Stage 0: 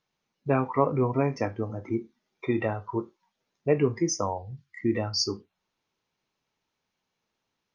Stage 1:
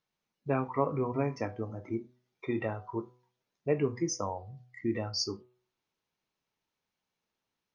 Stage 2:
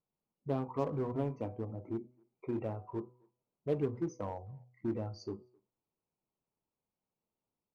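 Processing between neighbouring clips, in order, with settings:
hum removal 124 Hz, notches 11; level −5.5 dB
moving average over 25 samples; in parallel at −10.5 dB: wave folding −34 dBFS; on the sum: far-end echo of a speakerphone 260 ms, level −29 dB; level −3.5 dB

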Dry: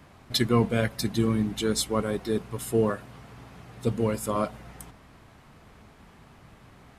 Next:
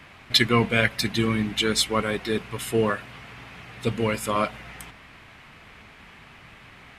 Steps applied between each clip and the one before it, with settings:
parametric band 2,400 Hz +14 dB 1.7 octaves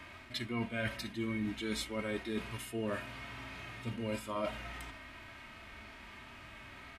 harmonic and percussive parts rebalanced percussive −15 dB
comb filter 3.2 ms, depth 63%
reversed playback
downward compressor 6 to 1, threshold −34 dBFS, peak gain reduction 15.5 dB
reversed playback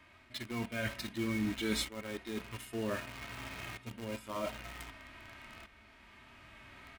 shaped tremolo saw up 0.53 Hz, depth 70%
in parallel at −5 dB: bit reduction 7 bits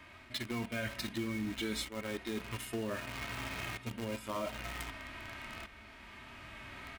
downward compressor 6 to 1, threshold −40 dBFS, peak gain reduction 11.5 dB
level +6 dB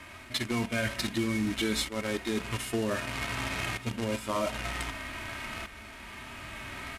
variable-slope delta modulation 64 kbit/s
level +7.5 dB

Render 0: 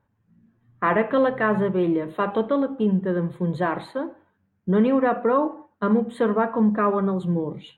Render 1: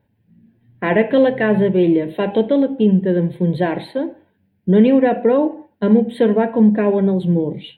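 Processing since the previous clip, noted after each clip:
low-shelf EQ 98 Hz −6.5 dB
phaser with its sweep stopped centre 2,900 Hz, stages 4
level +9 dB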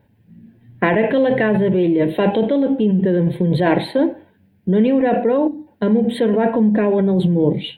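gain on a spectral selection 0:05.47–0:05.67, 320–3,500 Hz −18 dB
in parallel at +2.5 dB: compressor whose output falls as the input rises −20 dBFS, ratio −0.5
on the sum: level −4 dB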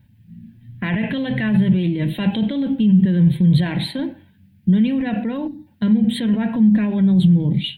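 brickwall limiter −9.5 dBFS, peak gain reduction 8 dB
drawn EQ curve 150 Hz 0 dB, 230 Hz −4 dB, 430 Hz −22 dB, 3,300 Hz −2 dB
level +6 dB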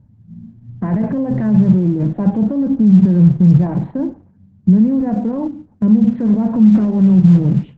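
low-pass filter 1,100 Hz 24 dB per octave
level +4.5 dB
Opus 12 kbit/s 48,000 Hz

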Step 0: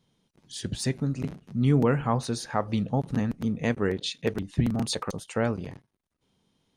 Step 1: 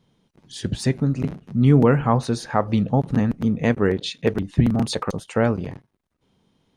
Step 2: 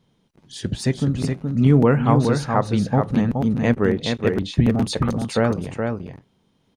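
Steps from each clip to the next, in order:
high-shelf EQ 3,400 Hz −8 dB; level +7 dB
single-tap delay 422 ms −5 dB

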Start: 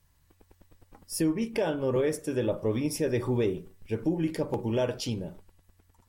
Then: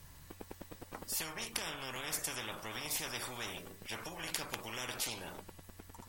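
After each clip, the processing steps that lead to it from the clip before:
every bin compressed towards the loudest bin 10 to 1
level +1 dB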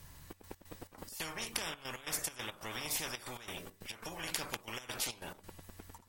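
gate pattern "xxx.x.xx.x.xx" 138 BPM −12 dB
level +1 dB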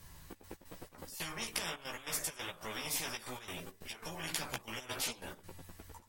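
multi-voice chorus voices 4, 0.74 Hz, delay 15 ms, depth 4 ms
level +3 dB

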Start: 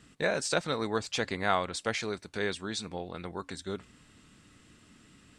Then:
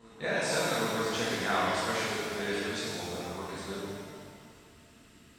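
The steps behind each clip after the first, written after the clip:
backwards echo 770 ms −18.5 dB
reverb with rising layers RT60 1.9 s, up +7 semitones, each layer −8 dB, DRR −9 dB
level −9 dB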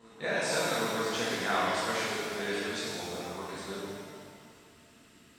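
low-shelf EQ 91 Hz −11 dB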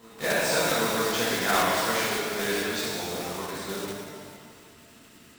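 one scale factor per block 3 bits
level +5 dB

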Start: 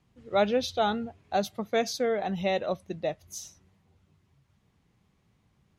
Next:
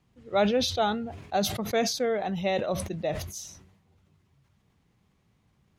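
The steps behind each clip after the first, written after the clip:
level that may fall only so fast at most 65 dB per second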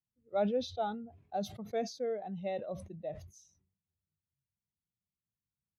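every bin expanded away from the loudest bin 1.5 to 1
level −8 dB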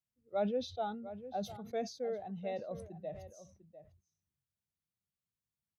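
slap from a distant wall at 120 metres, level −13 dB
level −2.5 dB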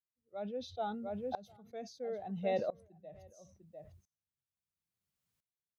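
tremolo with a ramp in dB swelling 0.74 Hz, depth 26 dB
level +9.5 dB

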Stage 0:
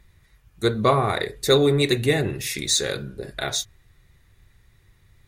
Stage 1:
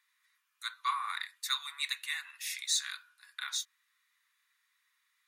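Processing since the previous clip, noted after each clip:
Butterworth high-pass 990 Hz 72 dB per octave
level −9 dB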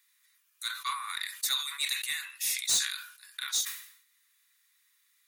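spectral tilt +4.5 dB per octave
soft clipping −18 dBFS, distortion −11 dB
level that may fall only so fast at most 91 dB per second
level −3 dB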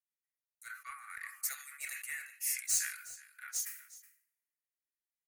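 phaser with its sweep stopped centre 1,000 Hz, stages 6
single-tap delay 370 ms −11 dB
multiband upward and downward expander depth 70%
level −5.5 dB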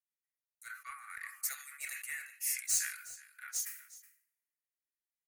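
no processing that can be heard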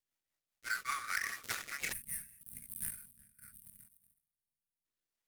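gap after every zero crossing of 0.087 ms
rotating-speaker cabinet horn 5 Hz, later 0.7 Hz, at 0:02.03
gain on a spectral selection 0:01.92–0:04.85, 250–8,300 Hz −24 dB
level +13 dB

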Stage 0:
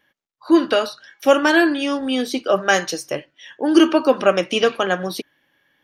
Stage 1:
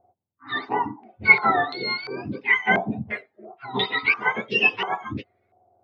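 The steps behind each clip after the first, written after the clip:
frequency axis turned over on the octave scale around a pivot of 1,100 Hz
low-pass on a step sequencer 2.9 Hz 810–3,100 Hz
level −6 dB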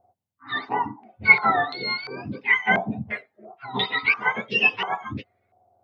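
parametric band 360 Hz −6 dB 0.6 octaves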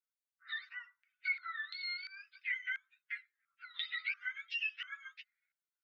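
Butterworth high-pass 1,400 Hz 72 dB per octave
downward compressor 2.5 to 1, threshold −31 dBFS, peak gain reduction 15 dB
level −8 dB

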